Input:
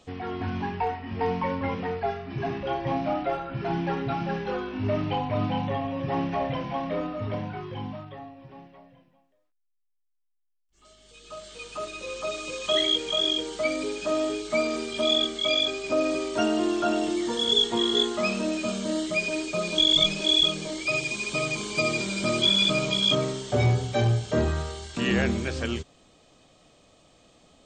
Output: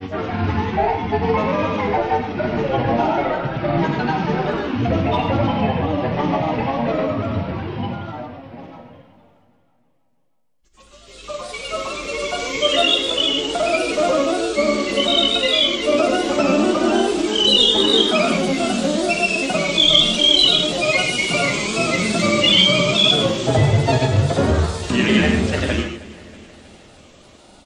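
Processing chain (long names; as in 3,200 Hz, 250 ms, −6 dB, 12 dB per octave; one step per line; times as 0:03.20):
in parallel at −2.5 dB: downward compressor, threshold −31 dBFS, peak gain reduction 13.5 dB
on the sum: granular cloud, pitch spread up and down by 3 semitones
repeating echo 318 ms, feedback 60%, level −20 dB
reverb whose tail is shaped and stops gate 170 ms flat, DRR 2.5 dB
level +5.5 dB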